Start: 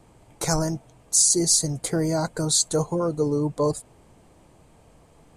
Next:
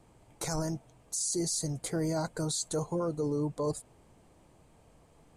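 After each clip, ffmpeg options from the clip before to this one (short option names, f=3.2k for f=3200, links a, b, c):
-af "alimiter=limit=-17dB:level=0:latency=1:release=12,volume=-6.5dB"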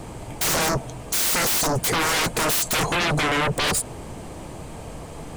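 -af "aeval=exprs='0.0708*sin(PI/2*6.31*val(0)/0.0708)':c=same,volume=4.5dB"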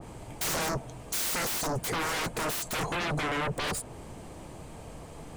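-af "adynamicequalizer=threshold=0.0158:dfrequency=2400:dqfactor=0.7:tfrequency=2400:tqfactor=0.7:attack=5:release=100:ratio=0.375:range=2:mode=cutabove:tftype=highshelf,volume=-8dB"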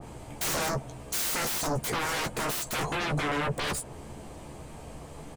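-filter_complex "[0:a]asplit=2[a][b];[b]adelay=14,volume=-7dB[c];[a][c]amix=inputs=2:normalize=0"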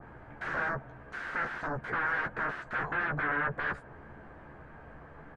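-af "lowpass=f=1.6k:t=q:w=5.7,volume=-7.5dB"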